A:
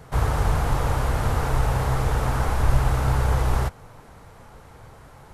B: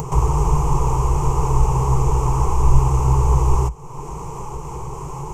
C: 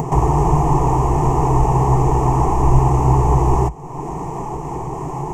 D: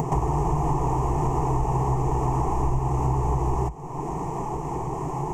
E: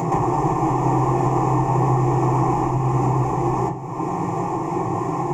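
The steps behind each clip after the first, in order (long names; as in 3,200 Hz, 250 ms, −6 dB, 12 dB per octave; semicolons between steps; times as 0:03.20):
EQ curve with evenly spaced ripples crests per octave 0.72, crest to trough 16 dB; upward compression, threshold −17 dBFS; flat-topped bell 2,300 Hz −10.5 dB; level +1 dB
hollow resonant body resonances 270/690/1,800 Hz, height 17 dB, ringing for 20 ms; level −3 dB
downward compressor, threshold −16 dBFS, peak gain reduction 9.5 dB; level −3.5 dB
convolution reverb RT60 0.40 s, pre-delay 3 ms, DRR −2.5 dB; MP3 320 kbit/s 44,100 Hz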